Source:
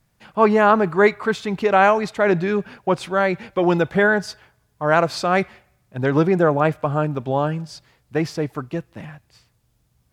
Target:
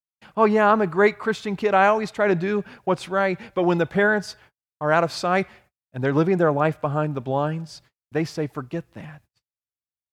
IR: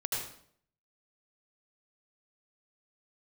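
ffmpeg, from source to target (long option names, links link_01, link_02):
-af "agate=range=-45dB:threshold=-49dB:ratio=16:detection=peak,volume=-2.5dB"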